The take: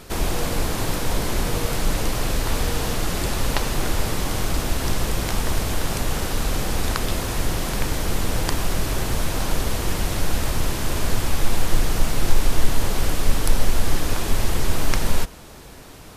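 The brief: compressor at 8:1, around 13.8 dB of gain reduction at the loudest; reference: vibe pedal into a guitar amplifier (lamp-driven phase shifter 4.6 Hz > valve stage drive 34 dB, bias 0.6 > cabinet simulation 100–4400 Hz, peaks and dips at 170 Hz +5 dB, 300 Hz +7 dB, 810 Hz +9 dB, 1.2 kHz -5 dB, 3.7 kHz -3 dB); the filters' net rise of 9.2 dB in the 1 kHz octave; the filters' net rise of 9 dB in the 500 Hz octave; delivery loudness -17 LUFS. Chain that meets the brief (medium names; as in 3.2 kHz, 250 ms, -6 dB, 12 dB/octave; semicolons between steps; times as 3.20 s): peaking EQ 500 Hz +8.5 dB; peaking EQ 1 kHz +3 dB; compression 8:1, threshold -22 dBFS; lamp-driven phase shifter 4.6 Hz; valve stage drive 34 dB, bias 0.6; cabinet simulation 100–4400 Hz, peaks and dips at 170 Hz +5 dB, 300 Hz +7 dB, 810 Hz +9 dB, 1.2 kHz -5 dB, 3.7 kHz -3 dB; trim +22 dB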